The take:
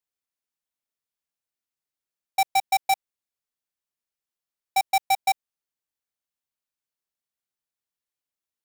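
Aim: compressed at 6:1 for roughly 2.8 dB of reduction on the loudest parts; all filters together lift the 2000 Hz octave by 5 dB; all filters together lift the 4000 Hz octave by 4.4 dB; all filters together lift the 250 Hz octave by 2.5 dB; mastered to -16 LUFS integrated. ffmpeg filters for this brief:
-af "equalizer=f=250:t=o:g=3.5,equalizer=f=2k:t=o:g=4.5,equalizer=f=4k:t=o:g=4,acompressor=threshold=-19dB:ratio=6,volume=9.5dB"

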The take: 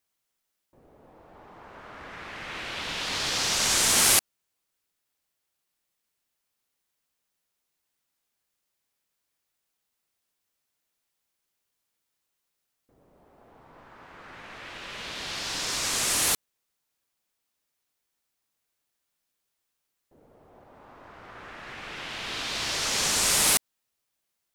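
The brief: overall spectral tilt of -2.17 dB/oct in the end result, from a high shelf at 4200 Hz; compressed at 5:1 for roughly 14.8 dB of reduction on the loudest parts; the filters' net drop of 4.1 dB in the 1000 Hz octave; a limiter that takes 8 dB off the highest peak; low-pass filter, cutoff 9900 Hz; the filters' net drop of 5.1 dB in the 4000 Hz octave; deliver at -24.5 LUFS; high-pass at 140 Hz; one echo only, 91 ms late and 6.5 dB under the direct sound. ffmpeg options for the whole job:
-af "highpass=140,lowpass=9.9k,equalizer=f=1k:t=o:g=-5,equalizer=f=4k:t=o:g=-9,highshelf=f=4.2k:g=4,acompressor=threshold=-36dB:ratio=5,alimiter=level_in=6.5dB:limit=-24dB:level=0:latency=1,volume=-6.5dB,aecho=1:1:91:0.473,volume=15dB"

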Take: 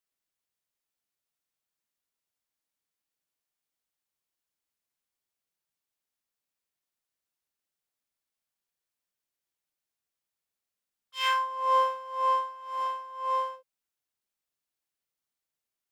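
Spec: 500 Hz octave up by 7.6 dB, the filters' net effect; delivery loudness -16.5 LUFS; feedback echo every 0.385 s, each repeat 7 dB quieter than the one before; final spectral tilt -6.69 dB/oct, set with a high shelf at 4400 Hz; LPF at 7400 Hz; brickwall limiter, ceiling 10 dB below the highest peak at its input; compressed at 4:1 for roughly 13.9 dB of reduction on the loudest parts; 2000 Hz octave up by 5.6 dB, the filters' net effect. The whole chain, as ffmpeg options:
-af "lowpass=7.4k,equalizer=f=500:t=o:g=7.5,equalizer=f=2k:t=o:g=8,highshelf=f=4.4k:g=-5.5,acompressor=threshold=-33dB:ratio=4,alimiter=level_in=9dB:limit=-24dB:level=0:latency=1,volume=-9dB,aecho=1:1:385|770|1155|1540|1925:0.447|0.201|0.0905|0.0407|0.0183,volume=22.5dB"

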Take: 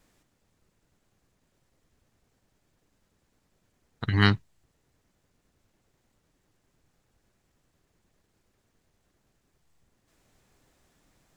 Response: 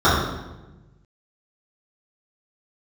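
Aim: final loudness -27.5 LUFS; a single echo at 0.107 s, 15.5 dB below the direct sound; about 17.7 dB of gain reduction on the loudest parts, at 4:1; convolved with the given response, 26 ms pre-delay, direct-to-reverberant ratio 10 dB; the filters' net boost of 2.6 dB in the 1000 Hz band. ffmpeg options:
-filter_complex "[0:a]equalizer=f=1k:t=o:g=3.5,acompressor=threshold=-35dB:ratio=4,aecho=1:1:107:0.168,asplit=2[a][b];[1:a]atrim=start_sample=2205,adelay=26[c];[b][c]afir=irnorm=-1:irlink=0,volume=-35.5dB[d];[a][d]amix=inputs=2:normalize=0,volume=11dB"

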